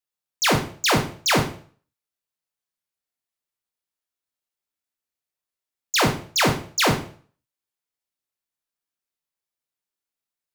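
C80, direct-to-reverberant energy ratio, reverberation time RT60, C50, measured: 13.5 dB, 2.0 dB, 0.45 s, 8.5 dB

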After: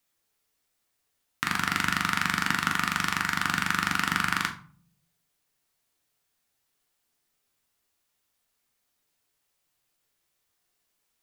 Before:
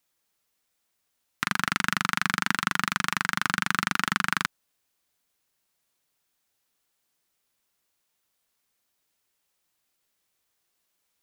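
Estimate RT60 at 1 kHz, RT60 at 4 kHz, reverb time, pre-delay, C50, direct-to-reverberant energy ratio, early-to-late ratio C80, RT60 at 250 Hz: 0.45 s, 0.30 s, 0.45 s, 7 ms, 10.5 dB, 3.5 dB, 16.0 dB, 0.75 s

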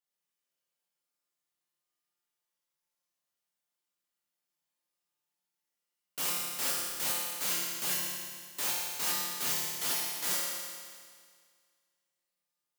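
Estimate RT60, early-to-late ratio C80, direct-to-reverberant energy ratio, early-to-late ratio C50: 1.9 s, 0.5 dB, -6.5 dB, -2.0 dB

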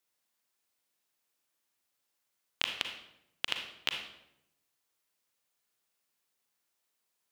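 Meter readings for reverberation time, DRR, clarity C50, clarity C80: 0.80 s, 4.0 dB, 5.5 dB, 8.5 dB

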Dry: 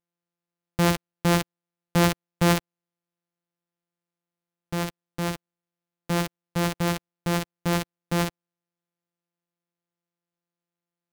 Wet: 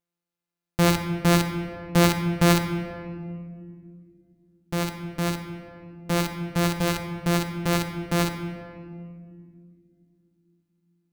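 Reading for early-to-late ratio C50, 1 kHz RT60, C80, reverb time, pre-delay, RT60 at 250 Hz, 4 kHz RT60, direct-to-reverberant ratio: 7.5 dB, 1.7 s, 8.5 dB, 2.2 s, 3 ms, 3.9 s, 1.2 s, 6.0 dB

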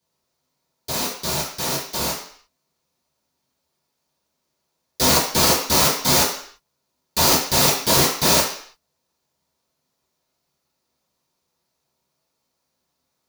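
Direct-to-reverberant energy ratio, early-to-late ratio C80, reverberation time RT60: -11.0 dB, 8.5 dB, 0.55 s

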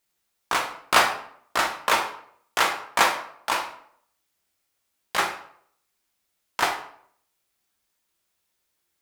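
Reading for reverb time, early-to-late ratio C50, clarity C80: 0.65 s, 8.0 dB, 12.0 dB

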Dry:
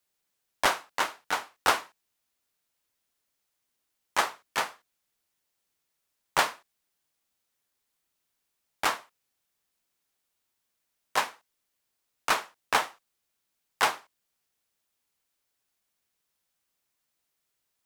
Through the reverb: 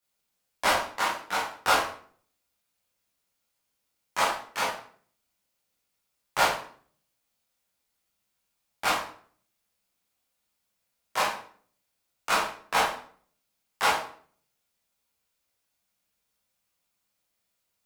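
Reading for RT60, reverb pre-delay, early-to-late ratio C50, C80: 0.50 s, 13 ms, 4.5 dB, 8.5 dB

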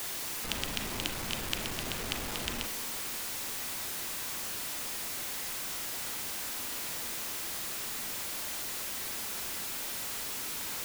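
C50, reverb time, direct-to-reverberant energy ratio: 10.0 dB, 0.65 s, 5.0 dB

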